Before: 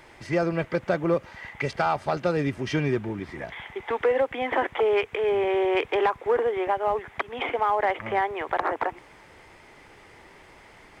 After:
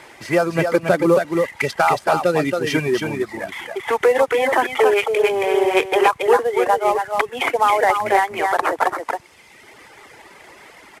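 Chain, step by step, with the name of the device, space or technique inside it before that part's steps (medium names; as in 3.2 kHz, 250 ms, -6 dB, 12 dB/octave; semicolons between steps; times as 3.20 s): 0.55–1.39 s: peaking EQ 220 Hz +5 dB 1.6 oct; delay 275 ms -3.5 dB; reverb removal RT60 1.2 s; early wireless headset (high-pass 270 Hz 6 dB/octave; CVSD coder 64 kbps); trim +9 dB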